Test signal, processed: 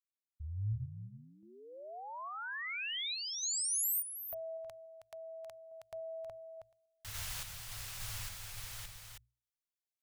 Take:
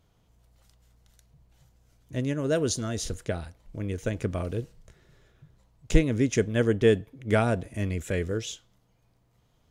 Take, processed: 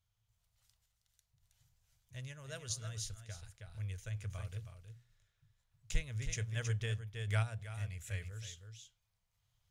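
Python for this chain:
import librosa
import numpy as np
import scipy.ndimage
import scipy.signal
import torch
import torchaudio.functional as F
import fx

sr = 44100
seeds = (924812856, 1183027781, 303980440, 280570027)

y = fx.tone_stack(x, sr, knobs='10-0-10')
y = fx.hum_notches(y, sr, base_hz=60, count=2)
y = y + 10.0 ** (-7.5 / 20.0) * np.pad(y, (int(319 * sr / 1000.0), 0))[:len(y)]
y = fx.tremolo_random(y, sr, seeds[0], hz=3.5, depth_pct=55)
y = fx.peak_eq(y, sr, hz=110.0, db=15.0, octaves=0.49)
y = y * librosa.db_to_amplitude(-5.0)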